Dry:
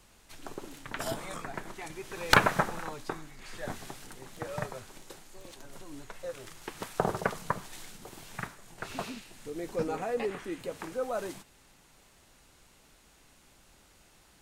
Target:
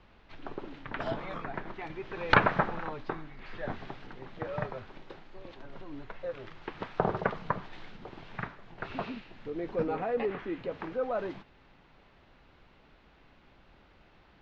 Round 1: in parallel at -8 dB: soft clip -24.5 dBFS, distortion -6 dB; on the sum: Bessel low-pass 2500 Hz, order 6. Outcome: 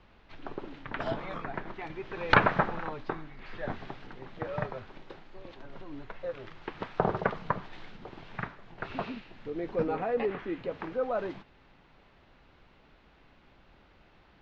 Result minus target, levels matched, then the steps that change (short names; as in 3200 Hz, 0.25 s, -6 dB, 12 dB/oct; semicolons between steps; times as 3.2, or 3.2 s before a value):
soft clip: distortion -5 dB
change: soft clip -35.5 dBFS, distortion -1 dB